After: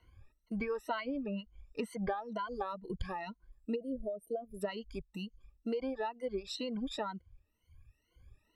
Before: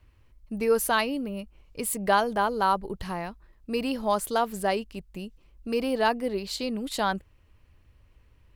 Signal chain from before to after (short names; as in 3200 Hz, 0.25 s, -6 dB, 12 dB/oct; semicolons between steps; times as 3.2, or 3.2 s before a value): moving spectral ripple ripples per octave 1.9, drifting +2.1 Hz, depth 20 dB; compressor 12:1, threshold -25 dBFS, peak gain reduction 14 dB; bell 12000 Hz -4 dB 2.2 oct, from 2.1 s 1500 Hz; treble ducked by the level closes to 2800 Hz, closed at -26 dBFS; 3.76–4.61 spectral gain 700–8600 Hz -27 dB; reverb removal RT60 1.5 s; gain -5.5 dB